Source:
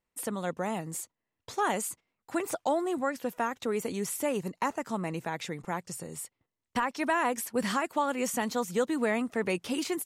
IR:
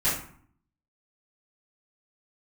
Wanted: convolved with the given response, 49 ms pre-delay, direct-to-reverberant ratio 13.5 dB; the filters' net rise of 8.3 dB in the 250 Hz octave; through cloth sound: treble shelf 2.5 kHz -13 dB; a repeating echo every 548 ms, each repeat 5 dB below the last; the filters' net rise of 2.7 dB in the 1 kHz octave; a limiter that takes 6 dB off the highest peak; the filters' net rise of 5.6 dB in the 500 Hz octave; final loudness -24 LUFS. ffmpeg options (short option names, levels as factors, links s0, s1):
-filter_complex "[0:a]equalizer=f=250:t=o:g=9,equalizer=f=500:t=o:g=4,equalizer=f=1000:t=o:g=3.5,alimiter=limit=0.15:level=0:latency=1,aecho=1:1:548|1096|1644|2192|2740|3288|3836:0.562|0.315|0.176|0.0988|0.0553|0.031|0.0173,asplit=2[s0][s1];[1:a]atrim=start_sample=2205,adelay=49[s2];[s1][s2]afir=irnorm=-1:irlink=0,volume=0.0531[s3];[s0][s3]amix=inputs=2:normalize=0,highshelf=f=2500:g=-13,volume=1.41"